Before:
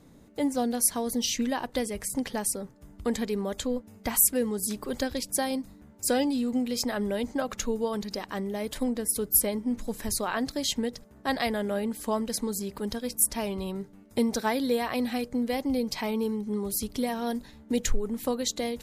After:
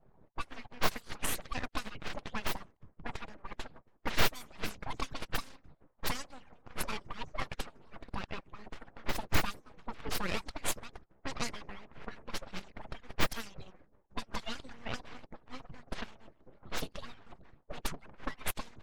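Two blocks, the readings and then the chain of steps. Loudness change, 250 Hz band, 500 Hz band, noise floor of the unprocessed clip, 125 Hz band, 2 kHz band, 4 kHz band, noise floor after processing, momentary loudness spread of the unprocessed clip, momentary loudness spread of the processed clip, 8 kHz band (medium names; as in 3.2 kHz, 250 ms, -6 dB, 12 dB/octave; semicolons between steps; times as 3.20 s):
-11.0 dB, -18.0 dB, -15.5 dB, -53 dBFS, -3.5 dB, -2.0 dB, -6.0 dB, -68 dBFS, 9 LU, 16 LU, -15.5 dB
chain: harmonic-percussive separation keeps percussive; full-wave rectifier; level-controlled noise filter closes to 1.1 kHz, open at -26 dBFS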